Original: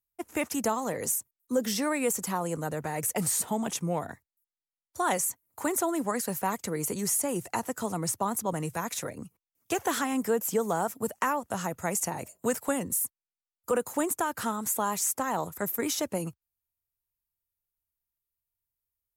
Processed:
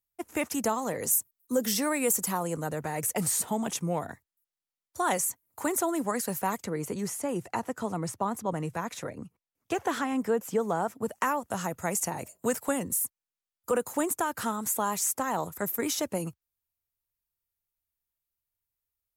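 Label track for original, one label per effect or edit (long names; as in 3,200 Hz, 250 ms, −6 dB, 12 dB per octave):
1.110000	2.430000	high-shelf EQ 9,600 Hz +9.5 dB
6.640000	11.110000	low-pass filter 2,900 Hz 6 dB per octave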